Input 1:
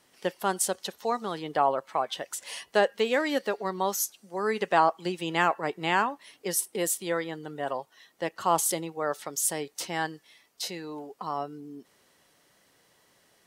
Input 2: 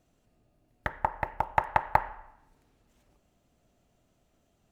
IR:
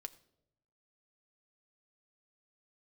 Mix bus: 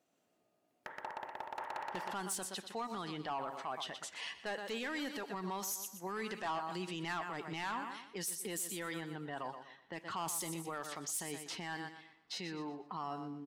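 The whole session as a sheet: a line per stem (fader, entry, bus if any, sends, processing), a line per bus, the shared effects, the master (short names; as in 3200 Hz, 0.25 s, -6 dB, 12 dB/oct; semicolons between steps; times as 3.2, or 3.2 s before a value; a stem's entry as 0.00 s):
-3.5 dB, 1.70 s, send -3.5 dB, echo send -11 dB, low-pass opened by the level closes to 1600 Hz, open at -25 dBFS; bell 530 Hz -10 dB 0.81 oct
-3.0 dB, 0.00 s, no send, echo send -4 dB, tube stage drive 22 dB, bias 0.5; HPF 300 Hz 12 dB/oct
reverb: on, RT60 0.80 s, pre-delay 4 ms
echo: feedback echo 0.122 s, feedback 32%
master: soft clip -24 dBFS, distortion -11 dB; limiter -32.5 dBFS, peak gain reduction 8.5 dB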